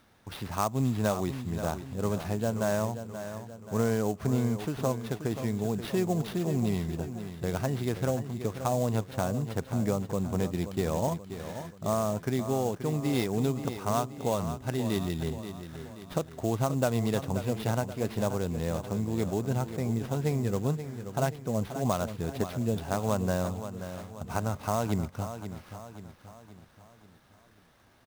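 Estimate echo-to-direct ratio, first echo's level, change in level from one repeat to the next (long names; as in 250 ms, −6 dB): −9.5 dB, −10.5 dB, −6.0 dB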